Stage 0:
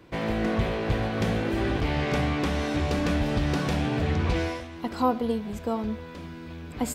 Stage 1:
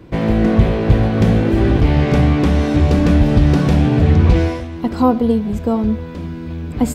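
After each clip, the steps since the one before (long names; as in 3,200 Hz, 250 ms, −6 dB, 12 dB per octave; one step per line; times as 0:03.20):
low-shelf EQ 470 Hz +11.5 dB
level +4 dB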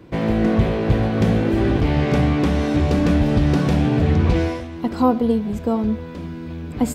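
low-shelf EQ 84 Hz −7.5 dB
level −2.5 dB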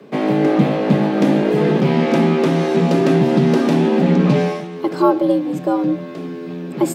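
frequency shifter +94 Hz
level +2.5 dB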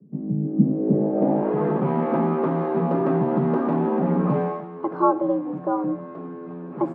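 low-pass filter sweep 180 Hz → 1,100 Hz, 0:00.44–0:01.53
level −8 dB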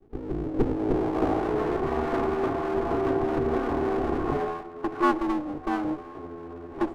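lower of the sound and its delayed copy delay 2.7 ms
level −2.5 dB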